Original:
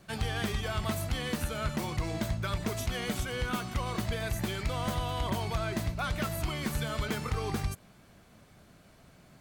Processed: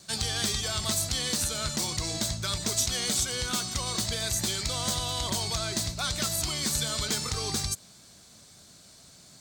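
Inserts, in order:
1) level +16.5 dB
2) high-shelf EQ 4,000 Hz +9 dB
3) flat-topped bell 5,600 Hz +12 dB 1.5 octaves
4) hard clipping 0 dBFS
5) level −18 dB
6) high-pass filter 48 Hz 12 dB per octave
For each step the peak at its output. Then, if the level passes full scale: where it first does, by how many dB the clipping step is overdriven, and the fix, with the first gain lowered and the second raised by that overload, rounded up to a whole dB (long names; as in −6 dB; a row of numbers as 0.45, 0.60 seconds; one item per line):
−6.0, −3.0, +6.5, 0.0, −18.0, −15.5 dBFS
step 3, 6.5 dB
step 1 +9.5 dB, step 5 −11 dB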